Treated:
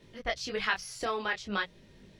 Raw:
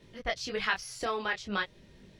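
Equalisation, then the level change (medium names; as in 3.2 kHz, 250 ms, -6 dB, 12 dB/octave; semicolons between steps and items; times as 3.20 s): hum notches 60/120/180 Hz; 0.0 dB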